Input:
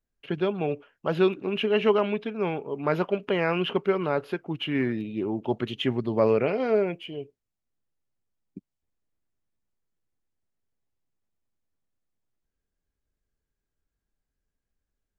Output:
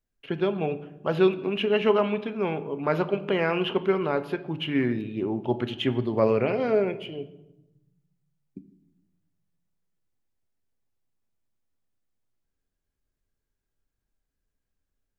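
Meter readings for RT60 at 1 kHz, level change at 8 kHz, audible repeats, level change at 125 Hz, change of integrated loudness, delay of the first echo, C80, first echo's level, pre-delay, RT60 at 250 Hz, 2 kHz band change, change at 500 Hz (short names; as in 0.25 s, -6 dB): 0.85 s, n/a, none, +1.0 dB, +0.5 dB, none, 17.0 dB, none, 8 ms, 1.4 s, +0.5 dB, +0.5 dB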